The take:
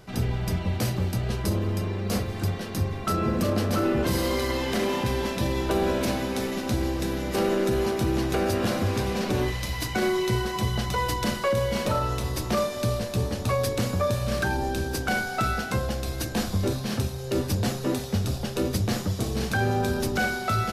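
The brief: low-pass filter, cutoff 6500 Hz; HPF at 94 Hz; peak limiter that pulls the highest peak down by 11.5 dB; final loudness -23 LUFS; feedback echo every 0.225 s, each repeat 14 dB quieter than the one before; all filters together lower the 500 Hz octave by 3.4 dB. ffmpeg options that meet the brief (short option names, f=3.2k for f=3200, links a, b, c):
-af "highpass=94,lowpass=6.5k,equalizer=f=500:t=o:g=-4.5,alimiter=level_in=2dB:limit=-24dB:level=0:latency=1,volume=-2dB,aecho=1:1:225|450:0.2|0.0399,volume=11dB"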